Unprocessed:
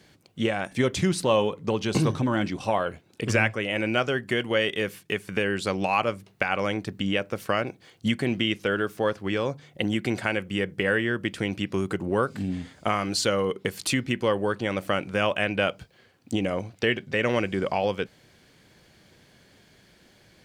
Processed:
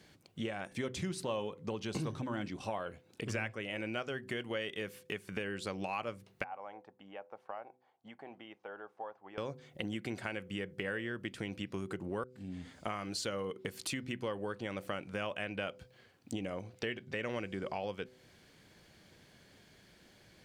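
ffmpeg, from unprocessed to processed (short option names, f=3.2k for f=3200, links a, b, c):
-filter_complex "[0:a]asettb=1/sr,asplit=3[a][b][c];[a]atrim=end=6.444[d];[b]atrim=start=6.44:end=9.38,asetpts=PTS-STARTPTS,afade=t=in:d=0.004:c=qsin,afade=t=out:st=2.936:d=0.004:c=qsin,bandpass=f=820:t=q:w=5[e];[c]atrim=start=9.376[f];[d][e]acrossfade=d=0.004:c1=hsin:c2=qsin[g];[g][f]acrossfade=d=0.004:c1=qsin:c2=hsin,asplit=2[h][i];[h]atrim=end=12.24,asetpts=PTS-STARTPTS,afade=t=out:st=12.236:d=0.004:c=hsin[j];[i]atrim=start=12.24,asetpts=PTS-STARTPTS,afade=t=in:d=0.51[k];[j][k]concat=n=2:v=0:a=1,bandreject=f=126.6:t=h:w=4,bandreject=f=253.2:t=h:w=4,bandreject=f=379.8:t=h:w=4,bandreject=f=506.4:t=h:w=4,acompressor=threshold=-37dB:ratio=2,volume=-4.5dB"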